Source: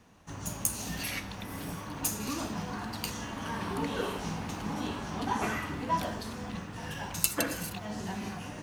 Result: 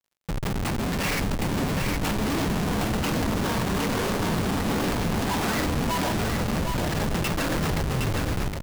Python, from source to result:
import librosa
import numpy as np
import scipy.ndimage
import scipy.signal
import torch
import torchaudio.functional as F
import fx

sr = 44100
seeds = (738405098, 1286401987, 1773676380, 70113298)

p1 = fx.tape_stop_end(x, sr, length_s=1.08)
p2 = scipy.signal.sosfilt(scipy.signal.butter(2, 77.0, 'highpass', fs=sr, output='sos'), p1)
p3 = fx.hum_notches(p2, sr, base_hz=50, count=3)
p4 = fx.rider(p3, sr, range_db=4, speed_s=0.5)
p5 = p3 + F.gain(torch.from_numpy(p4), -3.0).numpy()
p6 = fx.fuzz(p5, sr, gain_db=26.0, gate_db=-32.0)
p7 = scipy.signal.savgol_filter(p6, 25, 4, mode='constant')
p8 = fx.schmitt(p7, sr, flips_db=-38.0)
p9 = fx.dmg_crackle(p8, sr, seeds[0], per_s=81.0, level_db=-56.0)
y = p9 + fx.echo_single(p9, sr, ms=764, db=-4.5, dry=0)